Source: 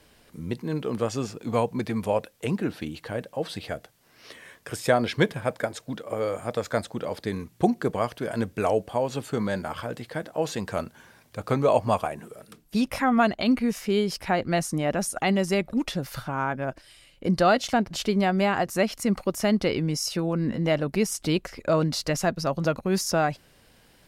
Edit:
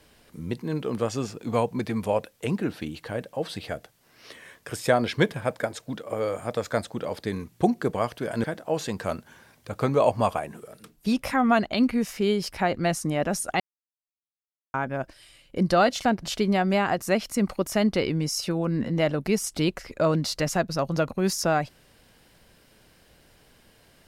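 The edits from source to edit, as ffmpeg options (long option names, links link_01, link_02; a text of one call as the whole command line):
ffmpeg -i in.wav -filter_complex "[0:a]asplit=4[link_01][link_02][link_03][link_04];[link_01]atrim=end=8.442[link_05];[link_02]atrim=start=10.118:end=15.28,asetpts=PTS-STARTPTS,afade=type=out:start_time=5.158:duration=0.004:curve=hsin[link_06];[link_03]atrim=start=15.28:end=16.42,asetpts=PTS-STARTPTS,volume=0[link_07];[link_04]atrim=start=16.42,asetpts=PTS-STARTPTS,afade=type=in:duration=0.004:curve=hsin[link_08];[link_06][link_07][link_08]concat=n=3:v=0:a=1[link_09];[link_05][link_09]acrossfade=duration=0.004:curve1=hsin:curve2=hsin" out.wav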